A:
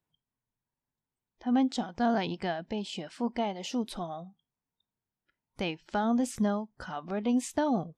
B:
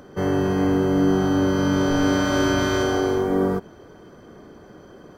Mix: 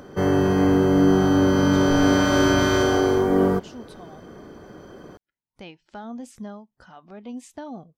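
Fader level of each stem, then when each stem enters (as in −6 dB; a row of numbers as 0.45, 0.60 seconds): −8.5, +2.0 decibels; 0.00, 0.00 seconds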